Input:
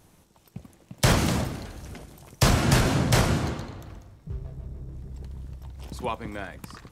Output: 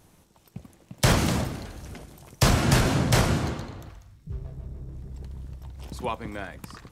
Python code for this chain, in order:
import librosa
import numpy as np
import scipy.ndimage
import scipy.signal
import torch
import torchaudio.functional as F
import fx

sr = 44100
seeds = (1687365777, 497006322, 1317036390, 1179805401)

y = fx.peak_eq(x, sr, hz=fx.line((3.89, 200.0), (4.31, 1000.0)), db=-13.5, octaves=2.0, at=(3.89, 4.31), fade=0.02)